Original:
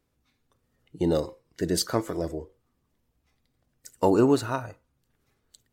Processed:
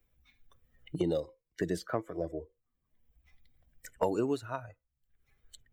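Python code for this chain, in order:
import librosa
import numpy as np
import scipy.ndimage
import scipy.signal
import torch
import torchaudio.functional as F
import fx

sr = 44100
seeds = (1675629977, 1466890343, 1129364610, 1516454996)

y = fx.bin_expand(x, sr, power=1.5)
y = fx.peak_eq(y, sr, hz=520.0, db=4.5, octaves=1.5)
y = fx.band_squash(y, sr, depth_pct=100)
y = F.gain(torch.from_numpy(y), -7.0).numpy()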